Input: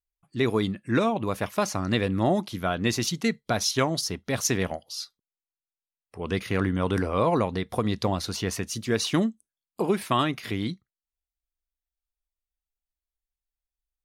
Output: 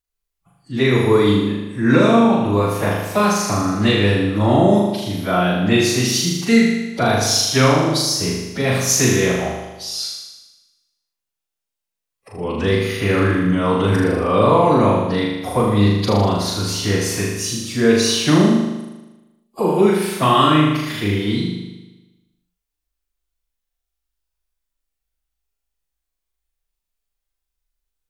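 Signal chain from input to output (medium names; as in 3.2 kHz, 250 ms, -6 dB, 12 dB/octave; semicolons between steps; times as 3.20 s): plain phase-vocoder stretch 2×; flutter echo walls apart 6.7 m, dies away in 1.1 s; trim +6.5 dB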